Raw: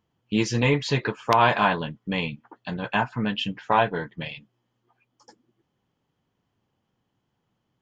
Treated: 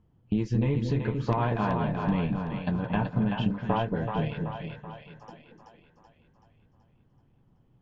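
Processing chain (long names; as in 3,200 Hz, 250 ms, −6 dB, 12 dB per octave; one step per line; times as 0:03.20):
spectral tilt −4 dB per octave
downward compressor 4 to 1, threshold −26 dBFS, peak gain reduction 14.5 dB
echo with a time of its own for lows and highs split 570 Hz, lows 229 ms, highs 380 ms, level −4 dB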